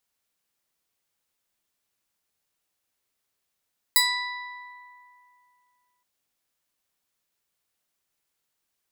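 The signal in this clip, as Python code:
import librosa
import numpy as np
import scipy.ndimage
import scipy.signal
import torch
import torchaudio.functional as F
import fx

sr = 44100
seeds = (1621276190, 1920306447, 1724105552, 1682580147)

y = fx.pluck(sr, length_s=2.07, note=83, decay_s=2.65, pick=0.33, brightness='bright')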